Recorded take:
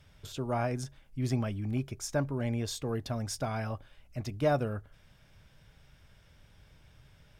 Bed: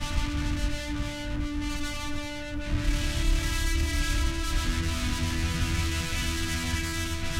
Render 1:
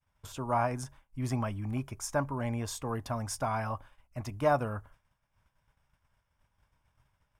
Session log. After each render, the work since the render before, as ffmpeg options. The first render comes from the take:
-af "agate=range=-33dB:threshold=-47dB:ratio=3:detection=peak,equalizer=f=160:t=o:w=0.67:g=-4,equalizer=f=400:t=o:w=0.67:g=-5,equalizer=f=1k:t=o:w=0.67:g=11,equalizer=f=4k:t=o:w=0.67:g=-7,equalizer=f=10k:t=o:w=0.67:g=4"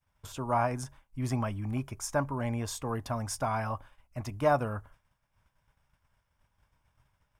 -af "volume=1dB"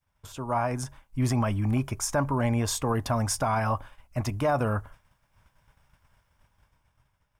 -af "dynaudnorm=f=100:g=17:m=8.5dB,alimiter=limit=-16.5dB:level=0:latency=1:release=56"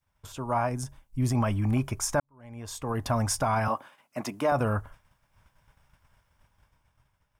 -filter_complex "[0:a]asettb=1/sr,asplit=3[a][b][c];[a]atrim=end=0.694[d];[b]atrim=start=0.69:end=1.35,asetpts=PTS-STARTPTS,afade=t=in:d=0.004:c=qsin,afade=t=out:st=0.656:d=0.004:c=qsin,equalizer=f=1.4k:w=0.42:g=-8[e];[c]atrim=start=1.346[f];[d][e]acrossfade=d=0.004:c1=hsin:c2=qsin[g];[g][f]acrossfade=d=0.004:c1=qsin:c2=hsin,asettb=1/sr,asplit=3[h][i][j];[h]atrim=end=3.684[k];[i]atrim=start=3.68:end=4.52,asetpts=PTS-STARTPTS,afade=t=in:d=0.004:c=qsin,afade=t=out:st=0.836:d=0.004:c=qsin,highpass=f=190:w=0.5412,highpass=f=190:w=1.3066[l];[j]atrim=start=4.516[m];[k][l]acrossfade=d=0.004:c1=hsin:c2=qsin[n];[n][m]acrossfade=d=0.004:c1=qsin:c2=hsin,asplit=2[o][p];[o]atrim=end=2.2,asetpts=PTS-STARTPTS,afade=t=out:st=2.196:d=0.004:c=hsin[q];[p]atrim=start=2.2,asetpts=PTS-STARTPTS,afade=t=in:d=0.91:c=qua[r];[q][r]concat=n=2:v=0:a=1"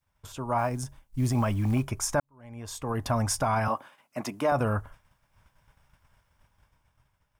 -filter_complex "[0:a]asettb=1/sr,asplit=3[a][b][c];[a]atrim=end=0.584[d];[b]atrim=start=0.58:end=1.85,asetpts=PTS-STARTPTS,afade=t=in:d=0.004:c=qsin,afade=t=out:st=1.266:d=0.004:c=qsin,acrusher=bits=8:mode=log:mix=0:aa=0.000001[e];[c]atrim=start=1.846[f];[d][e]acrossfade=d=0.004:c1=hsin:c2=qsin[g];[g][f]acrossfade=d=0.004:c1=qsin:c2=hsin"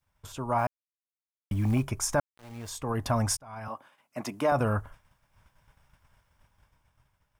-filter_complex "[0:a]asettb=1/sr,asplit=3[a][b][c];[a]atrim=end=2.134[d];[b]atrim=start=2.13:end=2.7,asetpts=PTS-STARTPTS,afade=t=in:d=0.004:c=qsin,afade=t=out:st=0.566:d=0.004:c=qsin,aeval=exprs='val(0)*gte(abs(val(0)),0.00531)':c=same[e];[c]atrim=start=2.696[f];[d][e]acrossfade=d=0.004:c1=hsin:c2=qsin[g];[g][f]acrossfade=d=0.004:c1=qsin:c2=hsin,asplit=4[h][i][j][k];[h]atrim=end=0.67,asetpts=PTS-STARTPTS,afade=t=out:st=0.666:d=0.004:c=hsin[l];[i]atrim=start=0.67:end=1.51,asetpts=PTS-STARTPTS,volume=0[m];[j]atrim=start=1.51:end=3.37,asetpts=PTS-STARTPTS,afade=t=in:d=0.004:c=hsin,afade=t=out:st=1.856:d=0.004:c=hsin[n];[k]atrim=start=3.37,asetpts=PTS-STARTPTS,afade=t=in:d=1.05[o];[l][m][n][o]concat=n=4:v=0:a=1"

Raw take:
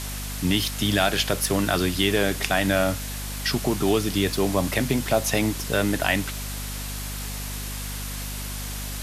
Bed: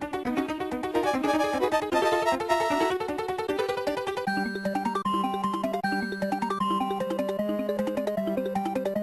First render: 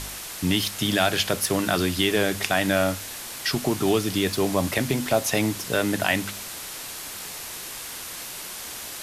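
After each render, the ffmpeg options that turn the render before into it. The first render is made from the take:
-af "bandreject=f=50:t=h:w=4,bandreject=f=100:t=h:w=4,bandreject=f=150:t=h:w=4,bandreject=f=200:t=h:w=4,bandreject=f=250:t=h:w=4"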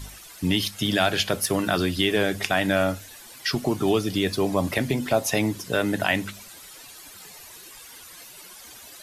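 -af "afftdn=nr=13:nf=-36"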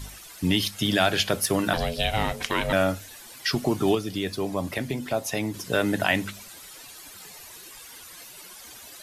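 -filter_complex "[0:a]asettb=1/sr,asplit=3[a][b][c];[a]atrim=end=1.734[d];[b]atrim=start=1.73:end=2.73,asetpts=PTS-STARTPTS,afade=t=in:d=0.004:c=qsin,afade=t=out:st=0.996:d=0.004:c=qsin,aeval=exprs='val(0)*sin(2*PI*330*n/s)':c=same[e];[c]atrim=start=2.726[f];[d][e]acrossfade=d=0.004:c1=hsin:c2=qsin[g];[g][f]acrossfade=d=0.004:c1=qsin:c2=hsin,asplit=3[h][i][j];[h]atrim=end=3.952[k];[i]atrim=start=3.948:end=5.542,asetpts=PTS-STARTPTS,volume=-5dB[l];[j]atrim=start=5.538[m];[k][l]acrossfade=d=0.004:c1=hsin:c2=hsin[n];[n][m]acrossfade=d=0.004:c1=hsin:c2=hsin"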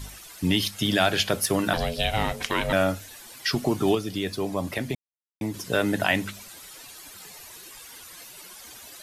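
-filter_complex "[0:a]asplit=3[a][b][c];[a]atrim=end=4.95,asetpts=PTS-STARTPTS,afade=t=out:st=4.946:d=0.004:c=hsin[d];[b]atrim=start=4.95:end=5.41,asetpts=PTS-STARTPTS,volume=0[e];[c]atrim=start=5.41,asetpts=PTS-STARTPTS,afade=t=in:d=0.004:c=hsin[f];[d][e][f]concat=n=3:v=0:a=1"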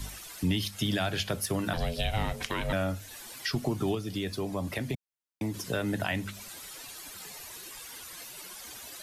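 -filter_complex "[0:a]acrossover=split=160[a][b];[b]acompressor=threshold=-35dB:ratio=2[c];[a][c]amix=inputs=2:normalize=0"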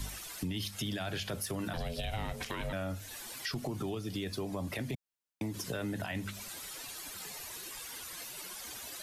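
-af "alimiter=limit=-23.5dB:level=0:latency=1:release=18,acompressor=threshold=-34dB:ratio=3"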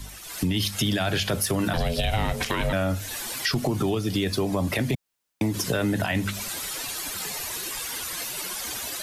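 -af "dynaudnorm=f=220:g=3:m=12dB"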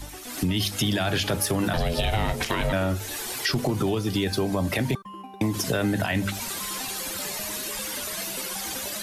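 -filter_complex "[1:a]volume=-14dB[a];[0:a][a]amix=inputs=2:normalize=0"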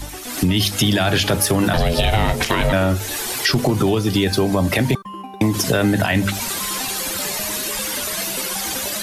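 -af "volume=7.5dB"

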